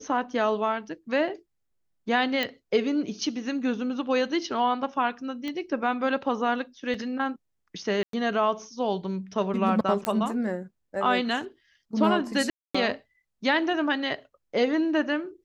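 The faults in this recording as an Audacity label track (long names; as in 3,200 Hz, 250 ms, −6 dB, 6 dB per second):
2.430000	2.430000	click −14 dBFS
5.480000	5.480000	click −20 dBFS
6.940000	6.940000	drop-out 3.2 ms
8.030000	8.130000	drop-out 103 ms
10.050000	10.050000	click −12 dBFS
12.500000	12.740000	drop-out 245 ms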